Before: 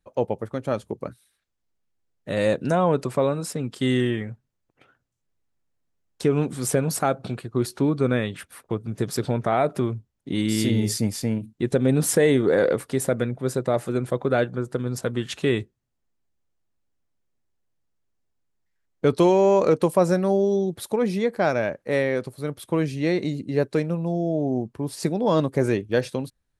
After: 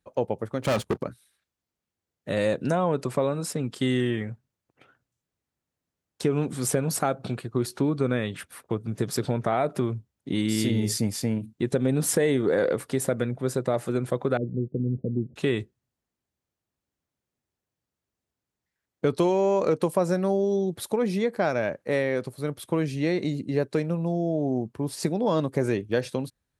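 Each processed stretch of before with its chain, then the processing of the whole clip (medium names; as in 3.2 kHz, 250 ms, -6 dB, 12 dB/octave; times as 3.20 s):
0.62–1.03 s: peaking EQ 2.3 kHz +4 dB 1.7 oct + waveshaping leveller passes 3 + hard clipper -19 dBFS
14.37–15.36 s: waveshaping leveller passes 2 + Gaussian low-pass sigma 25 samples + bass shelf 100 Hz -8.5 dB
whole clip: high-pass 60 Hz; compression 2:1, threshold -22 dBFS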